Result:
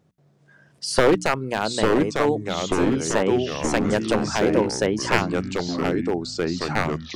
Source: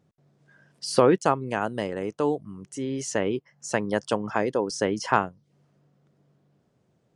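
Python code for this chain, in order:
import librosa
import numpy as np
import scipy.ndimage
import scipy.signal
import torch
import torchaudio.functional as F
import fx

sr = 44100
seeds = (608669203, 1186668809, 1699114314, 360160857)

y = np.minimum(x, 2.0 * 10.0 ** (-15.0 / 20.0) - x)
y = fx.hum_notches(y, sr, base_hz=60, count=5)
y = fx.echo_pitch(y, sr, ms=663, semitones=-3, count=3, db_per_echo=-3.0)
y = y * librosa.db_to_amplitude(4.0)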